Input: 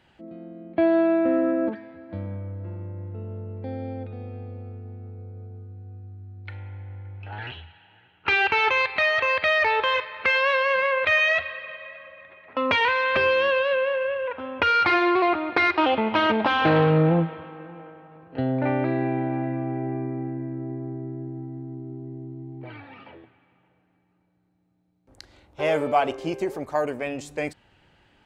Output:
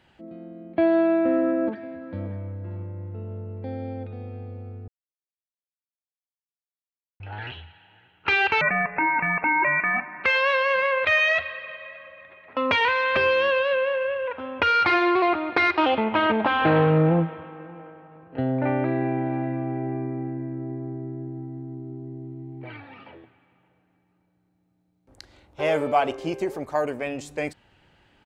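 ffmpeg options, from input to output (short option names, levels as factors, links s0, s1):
-filter_complex "[0:a]asplit=2[s0][s1];[s1]afade=t=in:st=1.19:d=0.01,afade=t=out:st=2.25:d=0.01,aecho=0:1:580|1160:0.16788|0.0251821[s2];[s0][s2]amix=inputs=2:normalize=0,asettb=1/sr,asplit=3[s3][s4][s5];[s3]atrim=end=8.614[s6];[s4]atrim=start=8.61:end=10.24,asetpts=PTS-STARTPTS,afade=t=in:d=0.004:c=qsin,afade=t=out:st=1.626:d=0.004:c=qsin,lowpass=f=2400:t=q:w=0.5098,lowpass=f=2400:t=q:w=0.6013,lowpass=f=2400:t=q:w=0.9,lowpass=f=2400:t=q:w=2.563,afreqshift=-2800[s7];[s5]atrim=start=10.236[s8];[s6][s7]acrossfade=d=0.004:c1=hsin:c2=qsin[s9];[s9][s8]acrossfade=d=0.004:c1=qsin:c2=hsin,asettb=1/sr,asplit=3[s10][s11][s12];[s10]atrim=end=16.044[s13];[s11]atrim=start=16.04:end=19.26,asetpts=PTS-STARTPTS,afade=t=in:d=0.004:c=qsin,afade=t=out:st=3.216:d=0.004:c=qsin,lowpass=3000[s14];[s12]atrim=start=19.256[s15];[s13][s14]acrossfade=d=0.004:c1=hsin:c2=qsin[s16];[s16][s15]acrossfade=d=0.004:c1=qsin:c2=hsin,asettb=1/sr,asplit=3[s17][s18][s19];[s17]atrim=end=22.244[s20];[s18]atrim=start=22.24:end=22.77,asetpts=PTS-STARTPTS,afade=t=in:d=0.004:c=qsin,afade=t=out:st=0.526:d=0.004:c=qsin,equalizer=f=2200:w=1.5:g=4.5[s21];[s19]atrim=start=22.766[s22];[s20][s21]acrossfade=d=0.004:c1=hsin:c2=qsin[s23];[s23][s22]acrossfade=d=0.004:c1=qsin:c2=hsin,asplit=3[s24][s25][s26];[s24]atrim=end=4.88,asetpts=PTS-STARTPTS,afade=t=out:st=4.876:d=0.004:c=hsin[s27];[s25]atrim=start=4.88:end=7.2,asetpts=PTS-STARTPTS,volume=0[s28];[s26]atrim=start=7.2,asetpts=PTS-STARTPTS,afade=t=in:d=0.004:c=hsin[s29];[s27][s28][s29]concat=n=3:v=0:a=1"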